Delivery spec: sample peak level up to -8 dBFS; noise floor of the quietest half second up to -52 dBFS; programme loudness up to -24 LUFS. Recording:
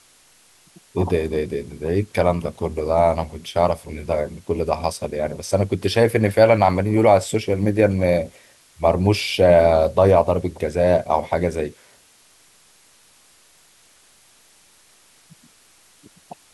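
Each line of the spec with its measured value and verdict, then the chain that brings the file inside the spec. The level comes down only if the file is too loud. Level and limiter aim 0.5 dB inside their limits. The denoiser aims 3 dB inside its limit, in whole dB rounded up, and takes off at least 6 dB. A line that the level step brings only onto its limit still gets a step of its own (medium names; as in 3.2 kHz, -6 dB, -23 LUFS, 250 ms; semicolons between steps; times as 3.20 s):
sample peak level -3.0 dBFS: fail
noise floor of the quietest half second -54 dBFS: pass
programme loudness -19.5 LUFS: fail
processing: trim -5 dB; peak limiter -8.5 dBFS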